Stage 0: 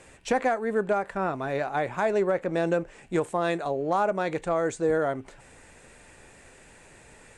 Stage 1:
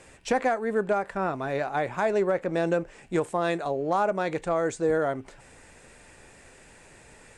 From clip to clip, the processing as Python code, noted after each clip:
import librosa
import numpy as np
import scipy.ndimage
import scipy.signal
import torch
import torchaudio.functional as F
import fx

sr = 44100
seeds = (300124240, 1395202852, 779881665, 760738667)

y = fx.peak_eq(x, sr, hz=5100.0, db=3.0, octaves=0.26)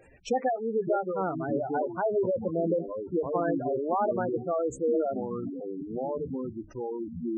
y = fx.echo_pitch(x, sr, ms=435, semitones=-6, count=3, db_per_echo=-6.0)
y = fx.hum_notches(y, sr, base_hz=50, count=4)
y = fx.spec_gate(y, sr, threshold_db=-10, keep='strong')
y = y * 10.0 ** (-1.5 / 20.0)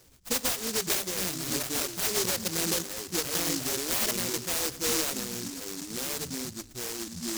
y = fx.echo_feedback(x, sr, ms=111, feedback_pct=55, wet_db=-19.5)
y = fx.noise_mod_delay(y, sr, seeds[0], noise_hz=5900.0, depth_ms=0.44)
y = y * 10.0 ** (-2.0 / 20.0)